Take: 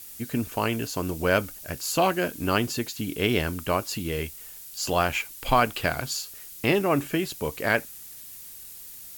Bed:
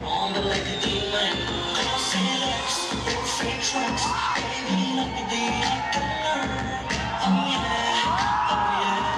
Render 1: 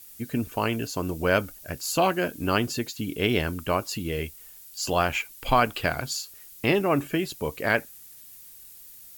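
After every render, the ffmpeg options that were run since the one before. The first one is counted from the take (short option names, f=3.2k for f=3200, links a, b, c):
-af "afftdn=nr=6:nf=-43"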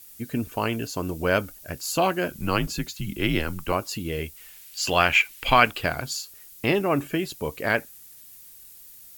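-filter_complex "[0:a]asettb=1/sr,asplit=3[a][b][c];[a]atrim=end=2.304[d];[b]atrim=start=2.3:end=3.72,asetpts=PTS-STARTPTS,afade=t=in:d=0.004:c=qsin,afade=t=out:st=1.416:d=0.004:c=qsin,afreqshift=-85[e];[c]atrim=start=3.716[f];[d][e]acrossfade=d=0.004:c1=hsin:c2=qsin[g];[g][f]acrossfade=d=0.004:c1=qsin:c2=hsin,asettb=1/sr,asplit=3[h][i][j];[h]atrim=end=4.364[k];[i]atrim=start=4.36:end=5.71,asetpts=PTS-STARTPTS,afade=t=in:d=0.004:c=qsin,afade=t=out:st=1.346:d=0.004:c=qsin,equalizer=f=2.4k:t=o:w=1.6:g=10.5[l];[j]atrim=start=5.706[m];[k][l]acrossfade=d=0.004:c1=hsin:c2=qsin[n];[n][m]acrossfade=d=0.004:c1=qsin:c2=hsin"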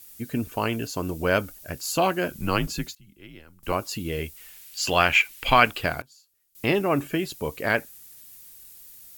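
-filter_complex "[0:a]asplit=5[a][b][c][d][e];[a]atrim=end=2.95,asetpts=PTS-STARTPTS,afade=t=out:st=2.48:d=0.47:c=log:silence=0.0794328[f];[b]atrim=start=2.95:end=3.63,asetpts=PTS-STARTPTS,volume=-22dB[g];[c]atrim=start=3.63:end=6.02,asetpts=PTS-STARTPTS,afade=t=in:d=0.47:c=log:silence=0.0794328,afade=t=out:st=2.16:d=0.23:c=log:silence=0.0668344[h];[d]atrim=start=6.02:end=6.55,asetpts=PTS-STARTPTS,volume=-23.5dB[i];[e]atrim=start=6.55,asetpts=PTS-STARTPTS,afade=t=in:d=0.23:c=log:silence=0.0668344[j];[f][g][h][i][j]concat=n=5:v=0:a=1"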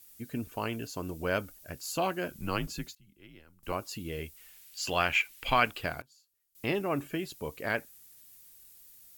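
-af "volume=-8dB"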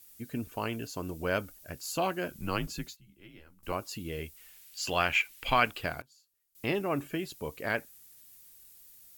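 -filter_complex "[0:a]asettb=1/sr,asplit=3[a][b][c];[a]atrim=end=2.904[d];[b]atrim=start=2.9:end=3.68,asetpts=PTS-STARTPTS,afade=t=in:d=0.004:c=qsin,afade=t=out:st=0.776:d=0.004:c=qsin,asplit=2[e][f];[f]adelay=15,volume=-5dB[g];[e][g]amix=inputs=2:normalize=0,atrim=end_sample=34398[h];[c]atrim=start=3.676[i];[d][h]acrossfade=d=0.004:c1=hsin:c2=qsin[j];[j][i]acrossfade=d=0.004:c1=qsin:c2=hsin"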